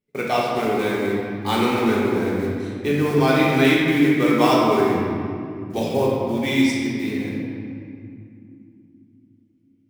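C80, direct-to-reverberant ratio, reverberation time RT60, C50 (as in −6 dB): 0.0 dB, −5.5 dB, 2.6 s, −1.5 dB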